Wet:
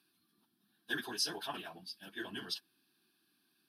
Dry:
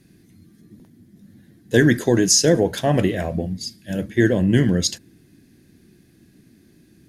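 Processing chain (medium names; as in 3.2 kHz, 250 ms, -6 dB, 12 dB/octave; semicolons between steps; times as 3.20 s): high-pass 700 Hz 12 dB/octave; static phaser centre 2 kHz, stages 6; plain phase-vocoder stretch 0.52×; trim -4.5 dB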